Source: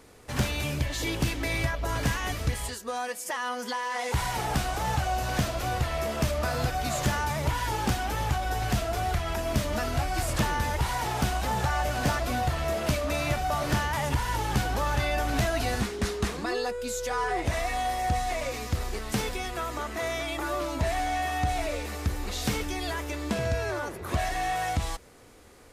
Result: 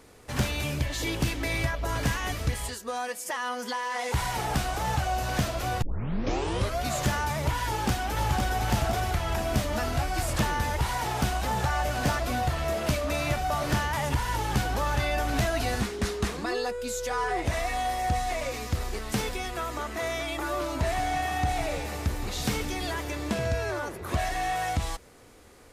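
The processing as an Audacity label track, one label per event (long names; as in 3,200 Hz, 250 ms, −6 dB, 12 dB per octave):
5.820000	5.820000	tape start 1.03 s
7.650000	8.590000	delay throw 510 ms, feedback 55%, level −4 dB
20.400000	23.370000	echo with shifted repeats 166 ms, feedback 63%, per repeat +34 Hz, level −13.5 dB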